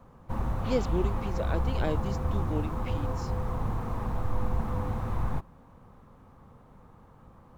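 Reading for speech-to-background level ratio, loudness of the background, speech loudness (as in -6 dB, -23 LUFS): -2.5 dB, -32.5 LUFS, -35.0 LUFS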